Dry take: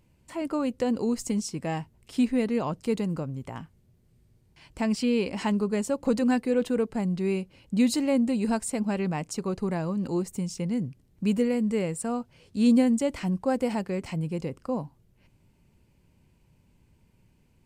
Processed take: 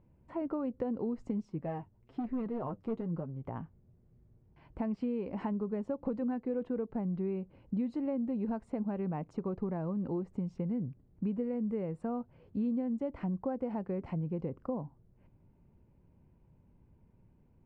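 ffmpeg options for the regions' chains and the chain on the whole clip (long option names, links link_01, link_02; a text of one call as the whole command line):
ffmpeg -i in.wav -filter_complex "[0:a]asettb=1/sr,asplit=3[link_01][link_02][link_03];[link_01]atrim=end=1.454[link_04];[link_02]atrim=start=1.45:end=3.46,asetpts=PTS-STARTPTS,afade=type=in:duration=0.004:curve=qsin,afade=type=out:start_time=2.006:duration=0.004:curve=qsin,asoftclip=type=hard:threshold=-22.5dB,flanger=delay=4.5:depth=5.9:regen=34:speed=1.1:shape=triangular[link_05];[link_03]atrim=start=3.456[link_06];[link_04][link_05]acrossfade=duration=0.004:curve1=hsin:curve2=qsin[link_07];[link_07][link_06]acrossfade=duration=0.004:curve1=qsin:curve2=hsin,acompressor=threshold=-30dB:ratio=6,lowpass=1100,volume=-1dB" out.wav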